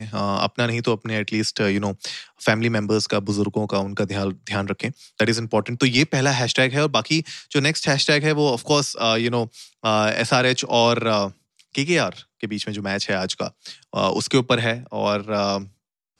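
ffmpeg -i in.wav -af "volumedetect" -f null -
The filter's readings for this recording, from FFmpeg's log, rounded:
mean_volume: -22.0 dB
max_volume: -4.3 dB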